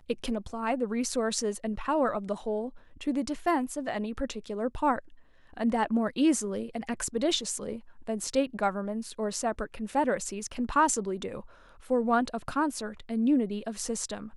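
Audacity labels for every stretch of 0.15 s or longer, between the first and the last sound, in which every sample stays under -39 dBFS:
2.690000	3.010000	silence
4.990000	5.530000	silence
7.790000	8.070000	silence
11.410000	11.860000	silence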